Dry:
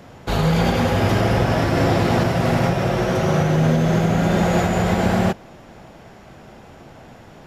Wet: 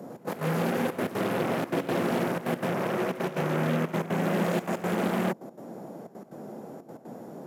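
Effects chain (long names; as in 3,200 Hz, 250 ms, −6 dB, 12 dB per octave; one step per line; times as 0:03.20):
drawn EQ curve 490 Hz 0 dB, 2,800 Hz −19 dB, 12,000 Hz +8 dB
in parallel at −11 dB: sine wavefolder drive 16 dB, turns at −11.5 dBFS
on the sum: high-shelf EQ 3,100 Hz −9 dB
on a send: backwards echo 173 ms −21 dB
on the sum: gate pattern "xx.x.xxxx" 183 BPM −12 dB
high-pass filter 180 Hz 24 dB per octave
level −6.5 dB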